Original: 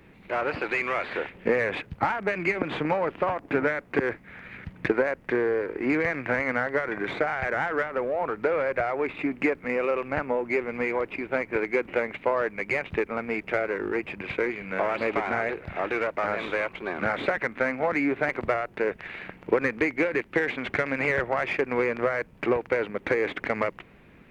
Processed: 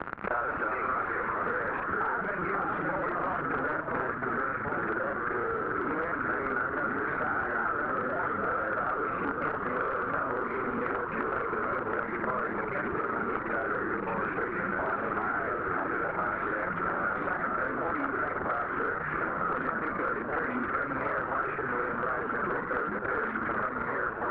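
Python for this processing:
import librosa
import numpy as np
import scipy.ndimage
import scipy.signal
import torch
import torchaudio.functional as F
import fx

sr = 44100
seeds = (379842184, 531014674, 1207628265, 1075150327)

p1 = fx.local_reverse(x, sr, ms=34.0)
p2 = fx.fuzz(p1, sr, gain_db=48.0, gate_db=-47.0)
p3 = p1 + (p2 * librosa.db_to_amplitude(-6.0))
p4 = fx.echo_pitch(p3, sr, ms=289, semitones=-2, count=3, db_per_echo=-3.0)
p5 = (np.mod(10.0 ** (7.0 / 20.0) * p4 + 1.0, 2.0) - 1.0) / 10.0 ** (7.0 / 20.0)
p6 = fx.ladder_lowpass(p5, sr, hz=1500.0, resonance_pct=70)
p7 = fx.band_squash(p6, sr, depth_pct=100)
y = p7 * librosa.db_to_amplitude(-8.0)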